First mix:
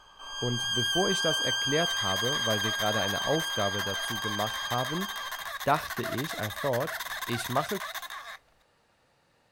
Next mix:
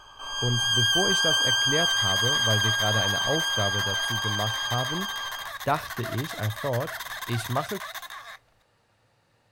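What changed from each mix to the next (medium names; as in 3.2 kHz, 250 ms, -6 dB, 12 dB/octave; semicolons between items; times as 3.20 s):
first sound +6.0 dB; master: add peaking EQ 110 Hz +11.5 dB 0.34 oct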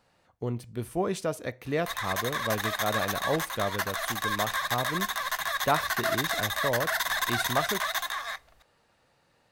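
first sound: muted; second sound +7.0 dB; master: add peaking EQ 110 Hz -11.5 dB 0.34 oct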